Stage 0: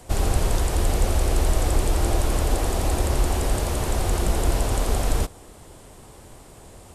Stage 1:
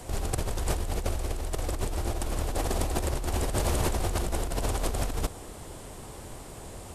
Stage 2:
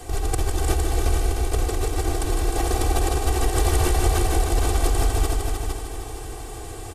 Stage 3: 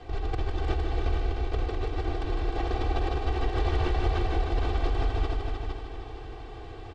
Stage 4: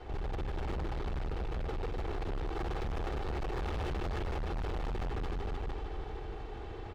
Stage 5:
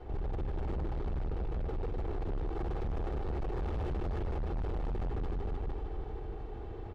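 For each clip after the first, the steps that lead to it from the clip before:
negative-ratio compressor -26 dBFS, ratio -1; gain -2.5 dB
comb 2.6 ms, depth 89%; multi-head echo 0.153 s, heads all three, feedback 44%, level -7.5 dB; gain +1.5 dB
LPF 4000 Hz 24 dB/oct; gain -6 dB
minimum comb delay 2.3 ms; high shelf 3700 Hz -9 dB; hard clip -33 dBFS, distortion -6 dB
tilt shelf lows +6 dB, about 1100 Hz; gain -4.5 dB

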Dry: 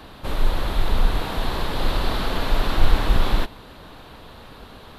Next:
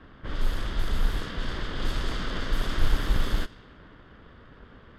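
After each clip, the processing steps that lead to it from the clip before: minimum comb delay 0.61 ms; low-pass opened by the level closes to 1900 Hz, open at -13.5 dBFS; gain -5.5 dB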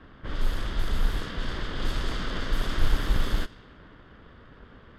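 nothing audible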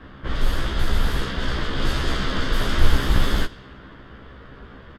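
doubler 15 ms -3 dB; gain +6 dB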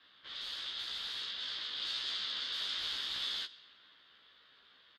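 band-pass 3900 Hz, Q 3.7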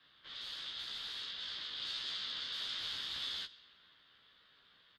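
octaver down 1 oct, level +1 dB; gain -3 dB

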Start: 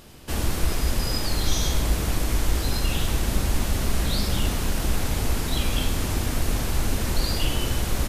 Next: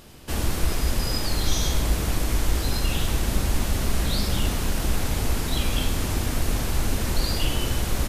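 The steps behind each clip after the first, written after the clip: nothing audible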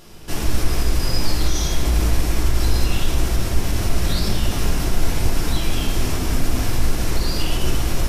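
bell 5500 Hz +5.5 dB 0.22 oct; limiter -16 dBFS, peak gain reduction 6.5 dB; reverb RT60 1.3 s, pre-delay 3 ms, DRR -2 dB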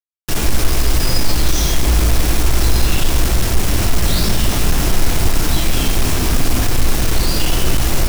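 in parallel at -2.5 dB: hard clip -20 dBFS, distortion -7 dB; on the sum: bit-crush 4-bit; gain +1.5 dB

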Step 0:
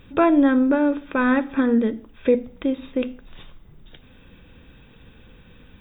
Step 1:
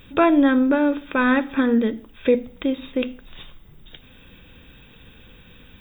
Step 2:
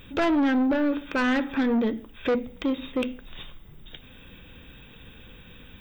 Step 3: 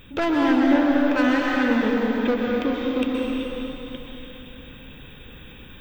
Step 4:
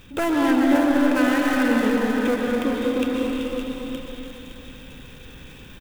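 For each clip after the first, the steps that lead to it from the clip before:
high shelf 2900 Hz +11 dB
soft clip -19 dBFS, distortion -9 dB
reverb RT60 3.6 s, pre-delay 0.113 s, DRR -3 dB
switching dead time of 0.07 ms; echo 0.564 s -8.5 dB

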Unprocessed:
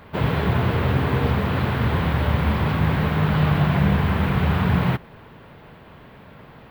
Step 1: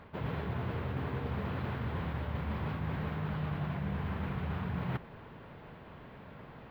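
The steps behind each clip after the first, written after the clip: high shelf 4600 Hz -10 dB; reverse; compressor 6:1, threshold -28 dBFS, peak gain reduction 13.5 dB; reverse; gain -5 dB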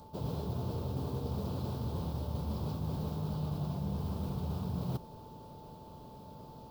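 whine 880 Hz -49 dBFS; EQ curve 570 Hz 0 dB, 1200 Hz -8 dB, 1900 Hz -25 dB, 5100 Hz +15 dB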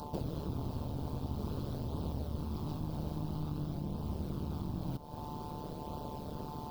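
compressor 6:1, threshold -44 dBFS, peak gain reduction 12.5 dB; flange 0.5 Hz, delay 0.2 ms, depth 1.2 ms, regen -57%; AM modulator 150 Hz, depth 80%; gain +16 dB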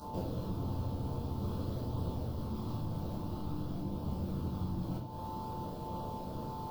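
reverb RT60 0.55 s, pre-delay 9 ms, DRR -7 dB; gain -7.5 dB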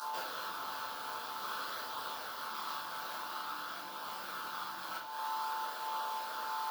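resonant high-pass 1500 Hz, resonance Q 3.8; gain +11 dB

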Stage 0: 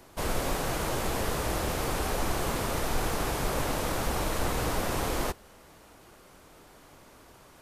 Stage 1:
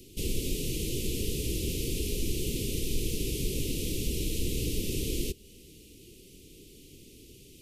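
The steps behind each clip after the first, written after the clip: in parallel at +1 dB: compressor, threshold -38 dBFS, peak gain reduction 14 dB; on the sum: elliptic band-stop 410–2700 Hz, stop band 40 dB; gain -1.5 dB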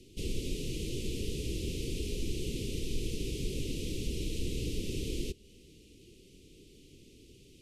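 air absorption 50 m; gain -3.5 dB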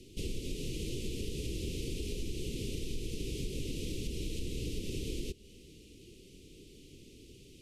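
compressor 3:1, threshold -36 dBFS, peak gain reduction 7 dB; gain +2 dB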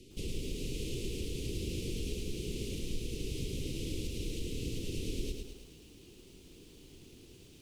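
lo-fi delay 0.107 s, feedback 55%, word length 10-bit, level -4 dB; gain -1.5 dB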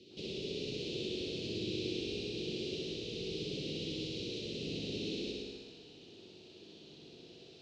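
speaker cabinet 190–5000 Hz, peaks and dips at 270 Hz -4 dB, 680 Hz +8 dB, 1100 Hz -5 dB, 2100 Hz -5 dB, 4000 Hz +6 dB; flutter echo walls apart 10.8 m, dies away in 1.3 s

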